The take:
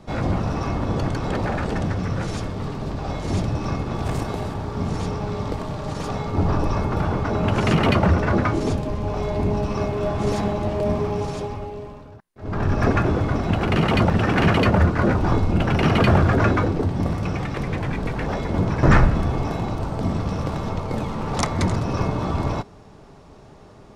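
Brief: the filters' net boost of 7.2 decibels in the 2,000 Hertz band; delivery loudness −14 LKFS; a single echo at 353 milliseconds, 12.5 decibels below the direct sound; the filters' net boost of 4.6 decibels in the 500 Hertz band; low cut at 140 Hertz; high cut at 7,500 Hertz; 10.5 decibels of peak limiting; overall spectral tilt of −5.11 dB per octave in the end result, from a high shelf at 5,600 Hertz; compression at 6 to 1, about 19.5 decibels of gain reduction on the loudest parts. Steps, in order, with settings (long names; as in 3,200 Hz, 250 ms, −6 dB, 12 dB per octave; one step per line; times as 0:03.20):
high-pass filter 140 Hz
low-pass filter 7,500 Hz
parametric band 500 Hz +5.5 dB
parametric band 2,000 Hz +8.5 dB
high-shelf EQ 5,600 Hz +3.5 dB
downward compressor 6 to 1, threshold −33 dBFS
brickwall limiter −29 dBFS
single-tap delay 353 ms −12.5 dB
level +24 dB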